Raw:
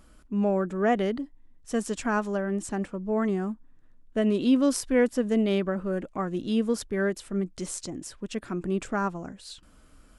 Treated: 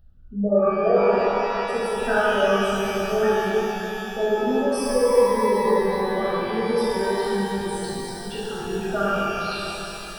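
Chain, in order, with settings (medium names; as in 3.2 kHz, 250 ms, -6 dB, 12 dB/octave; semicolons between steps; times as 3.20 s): resonances exaggerated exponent 3; static phaser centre 1.5 kHz, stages 8; pitch-shifted reverb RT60 3.4 s, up +12 st, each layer -8 dB, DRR -10 dB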